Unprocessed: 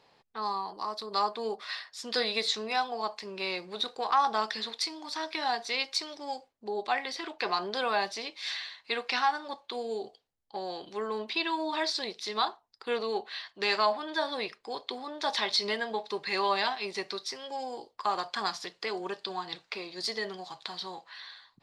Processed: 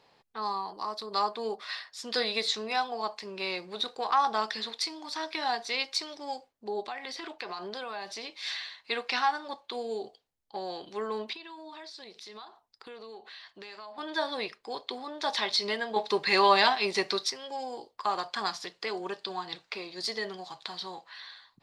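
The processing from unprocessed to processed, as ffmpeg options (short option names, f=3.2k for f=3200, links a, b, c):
-filter_complex "[0:a]asettb=1/sr,asplit=3[a][b][c];[a]atrim=end=6.814[d];[b]atrim=start=6.81:end=8.42,asetpts=PTS-STARTPTS,afade=t=in:d=0.004:c=qsin,afade=t=out:st=1.606:d=0.004:c=qsin,acompressor=threshold=-35dB:ratio=4:attack=3.2:release=140:knee=1:detection=peak[e];[c]atrim=start=8.416[f];[d][e]acrossfade=d=0.004:c1=hsin:c2=qsin[g];[g][f]acrossfade=d=0.004:c1=qsin:c2=hsin,asettb=1/sr,asplit=3[h][i][j];[h]atrim=end=11.334[k];[i]atrim=start=11.33:end=13.98,asetpts=PTS-STARTPTS,afade=t=in:d=0.004:c=qsin,afade=t=out:st=2.646:d=0.004:c=qsin,acompressor=threshold=-44dB:ratio=5:attack=3.2:release=140:knee=1:detection=peak[l];[j]atrim=start=13.976[m];[k][l]acrossfade=d=0.004:c1=hsin:c2=qsin[n];[n][m]acrossfade=d=0.004:c1=qsin:c2=hsin,asettb=1/sr,asplit=3[o][p][q];[o]atrim=end=15.964[r];[p]atrim=start=15.96:end=17.3,asetpts=PTS-STARTPTS,afade=t=in:d=0.004:c=qsin,afade=t=out:st=1.336:d=0.004:c=qsin,acontrast=71[s];[q]atrim=start=17.296[t];[r][s]acrossfade=d=0.004:c1=hsin:c2=qsin[u];[u][t]acrossfade=d=0.004:c1=qsin:c2=hsin"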